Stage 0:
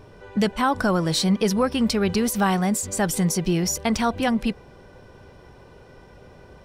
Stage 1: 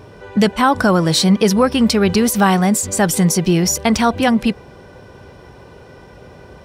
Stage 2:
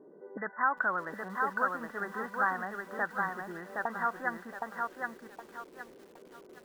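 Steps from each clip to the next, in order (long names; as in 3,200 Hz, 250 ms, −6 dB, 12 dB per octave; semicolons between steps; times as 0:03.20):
high-pass filter 53 Hz; level +7.5 dB
linear-phase brick-wall band-pass 150–2,000 Hz; envelope filter 320–1,500 Hz, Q 2.1, up, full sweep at −15 dBFS; feedback echo at a low word length 767 ms, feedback 35%, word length 8 bits, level −3 dB; level −8.5 dB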